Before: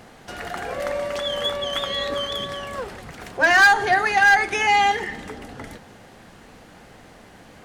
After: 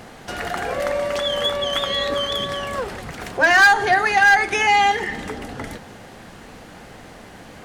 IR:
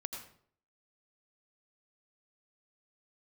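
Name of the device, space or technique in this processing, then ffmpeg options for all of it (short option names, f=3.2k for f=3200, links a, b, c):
parallel compression: -filter_complex "[0:a]asplit=2[a][b];[b]acompressor=threshold=-28dB:ratio=6,volume=-1dB[c];[a][c]amix=inputs=2:normalize=0"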